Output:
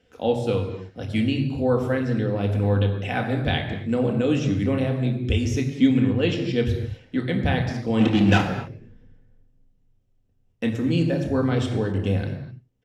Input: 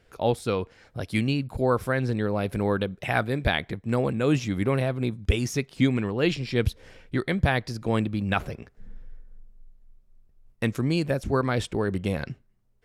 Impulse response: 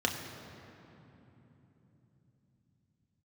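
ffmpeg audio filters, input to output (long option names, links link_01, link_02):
-filter_complex "[0:a]aecho=1:1:90:0.0841,asplit=3[link_01][link_02][link_03];[link_01]afade=type=out:start_time=7.99:duration=0.02[link_04];[link_02]asplit=2[link_05][link_06];[link_06]highpass=frequency=720:poles=1,volume=30dB,asoftclip=type=tanh:threshold=-10dB[link_07];[link_05][link_07]amix=inputs=2:normalize=0,lowpass=frequency=3000:poles=1,volume=-6dB,afade=type=in:start_time=7.99:duration=0.02,afade=type=out:start_time=8.4:duration=0.02[link_08];[link_03]afade=type=in:start_time=8.4:duration=0.02[link_09];[link_04][link_08][link_09]amix=inputs=3:normalize=0,equalizer=frequency=1300:width=0.99:gain=-4.5[link_10];[1:a]atrim=start_sample=2205,afade=type=out:start_time=0.32:duration=0.01,atrim=end_sample=14553[link_11];[link_10][link_11]afir=irnorm=-1:irlink=0,volume=-7dB"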